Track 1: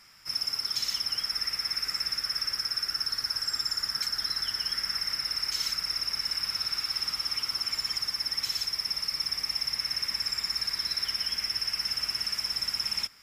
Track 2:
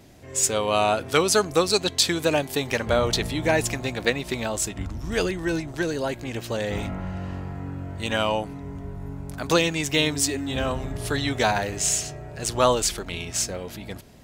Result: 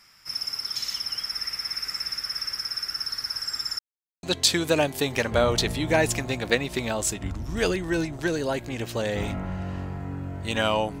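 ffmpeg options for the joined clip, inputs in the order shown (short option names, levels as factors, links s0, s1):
-filter_complex "[0:a]apad=whole_dur=11,atrim=end=11,asplit=2[s0][s1];[s0]atrim=end=3.79,asetpts=PTS-STARTPTS,afade=t=out:st=3.786:d=0.004:c=hsin[s2];[s1]atrim=start=3.79:end=4.23,asetpts=PTS-STARTPTS,volume=0[s3];[1:a]atrim=start=1.78:end=8.55,asetpts=PTS-STARTPTS,afade=t=in:d=0.004:c=hsin[s4];[s2][s3][s4]concat=n=3:v=0:a=1"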